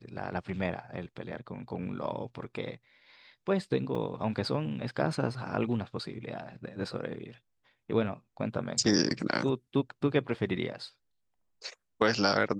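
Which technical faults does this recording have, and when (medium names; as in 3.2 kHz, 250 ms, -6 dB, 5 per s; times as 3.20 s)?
3.95 s: dropout 2.3 ms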